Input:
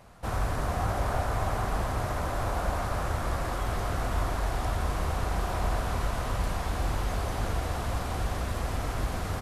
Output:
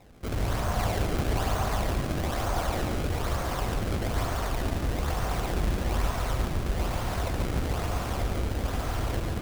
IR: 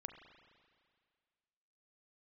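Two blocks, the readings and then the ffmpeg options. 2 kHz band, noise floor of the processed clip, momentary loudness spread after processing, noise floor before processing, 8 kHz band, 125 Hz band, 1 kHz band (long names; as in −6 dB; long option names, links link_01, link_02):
+0.5 dB, −32 dBFS, 2 LU, −33 dBFS, +2.0 dB, +1.5 dB, −1.0 dB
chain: -filter_complex "[0:a]acrusher=samples=28:mix=1:aa=0.000001:lfo=1:lforange=44.8:lforate=1.1,asplit=2[link_01][link_02];[1:a]atrim=start_sample=2205,adelay=141[link_03];[link_02][link_03]afir=irnorm=-1:irlink=0,volume=0.5dB[link_04];[link_01][link_04]amix=inputs=2:normalize=0"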